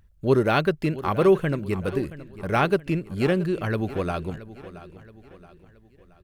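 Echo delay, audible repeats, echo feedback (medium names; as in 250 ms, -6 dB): 674 ms, 3, 44%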